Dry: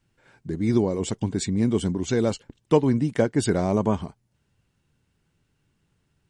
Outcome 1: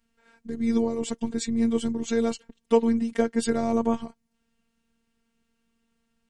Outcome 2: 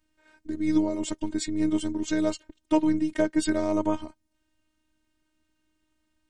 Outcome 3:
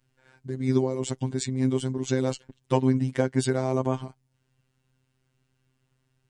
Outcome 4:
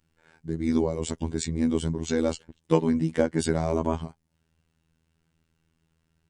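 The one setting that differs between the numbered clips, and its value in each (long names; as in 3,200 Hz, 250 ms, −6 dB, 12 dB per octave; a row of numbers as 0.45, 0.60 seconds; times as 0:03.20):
phases set to zero, frequency: 230, 310, 130, 81 Hertz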